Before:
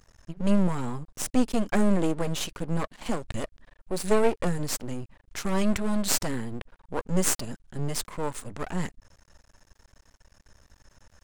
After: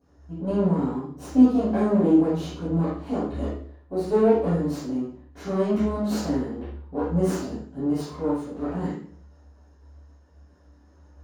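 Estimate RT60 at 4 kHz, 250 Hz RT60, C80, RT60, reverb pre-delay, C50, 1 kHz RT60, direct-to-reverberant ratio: 0.45 s, 0.55 s, 5.0 dB, 0.50 s, 3 ms, 0.5 dB, 0.50 s, -19.0 dB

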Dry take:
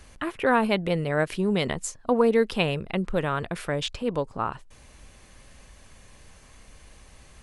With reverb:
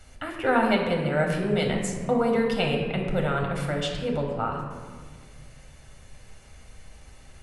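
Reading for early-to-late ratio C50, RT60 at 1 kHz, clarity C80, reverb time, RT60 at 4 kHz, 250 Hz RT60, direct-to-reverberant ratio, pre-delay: 3.5 dB, 1.5 s, 5.0 dB, 1.7 s, 1.1 s, 2.5 s, 0.0 dB, 8 ms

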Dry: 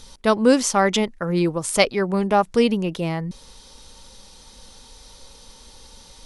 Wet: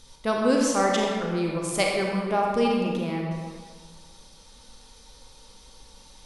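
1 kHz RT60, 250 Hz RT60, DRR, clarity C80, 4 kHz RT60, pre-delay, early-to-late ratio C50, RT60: 1.7 s, 1.6 s, -1.5 dB, 2.0 dB, 1.1 s, 31 ms, 0.0 dB, 1.8 s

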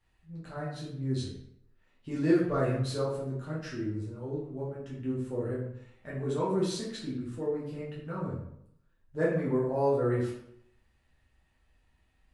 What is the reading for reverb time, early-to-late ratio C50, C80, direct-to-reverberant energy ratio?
0.75 s, 3.5 dB, 6.5 dB, -7.5 dB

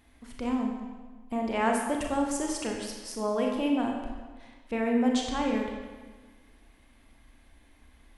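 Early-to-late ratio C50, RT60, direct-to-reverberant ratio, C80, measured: 3.0 dB, 1.4 s, 0.5 dB, 4.5 dB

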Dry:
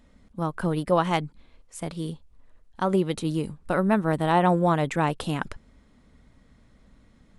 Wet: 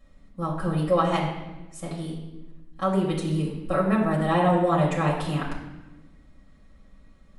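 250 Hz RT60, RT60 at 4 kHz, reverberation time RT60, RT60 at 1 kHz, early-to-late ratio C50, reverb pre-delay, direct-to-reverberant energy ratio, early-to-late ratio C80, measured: 1.7 s, 0.85 s, 1.0 s, 1.0 s, 4.5 dB, 4 ms, -5.5 dB, 6.5 dB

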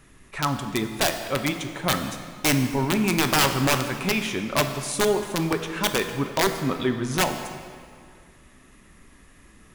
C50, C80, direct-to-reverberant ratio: 8.0 dB, 9.0 dB, 6.0 dB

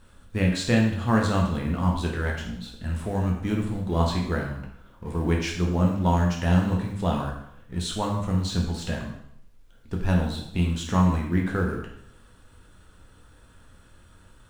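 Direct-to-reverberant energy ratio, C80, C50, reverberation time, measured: -1.0 dB, 7.5 dB, 4.5 dB, 0.70 s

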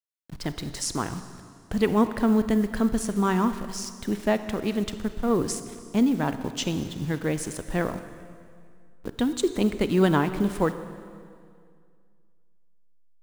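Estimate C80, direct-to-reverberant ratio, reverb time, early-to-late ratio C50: 12.0 dB, 10.5 dB, 2.1 s, 11.0 dB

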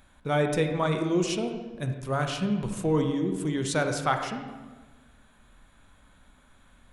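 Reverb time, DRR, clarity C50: 1.4 s, 5.0 dB, 6.0 dB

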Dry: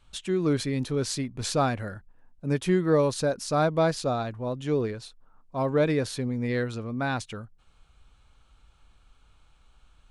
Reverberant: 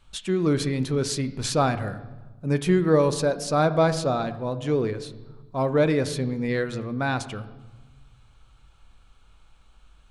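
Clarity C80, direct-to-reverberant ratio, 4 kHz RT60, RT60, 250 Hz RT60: 15.5 dB, 11.0 dB, 1.1 s, 1.2 s, 1.8 s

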